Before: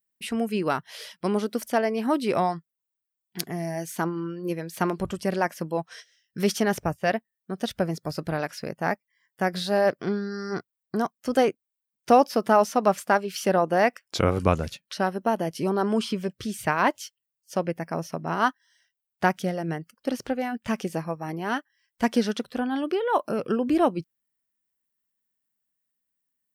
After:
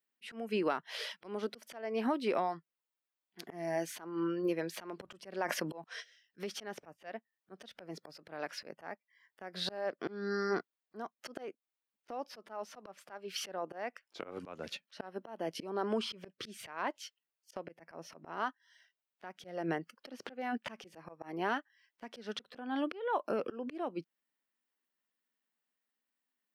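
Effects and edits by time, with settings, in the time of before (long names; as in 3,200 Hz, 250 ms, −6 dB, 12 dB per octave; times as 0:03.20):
0:05.36–0:05.84: level that may fall only so fast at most 36 dB per second
whole clip: three-way crossover with the lows and the highs turned down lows −24 dB, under 220 Hz, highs −12 dB, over 4,600 Hz; downward compressor 8 to 1, threshold −31 dBFS; volume swells 241 ms; level +2.5 dB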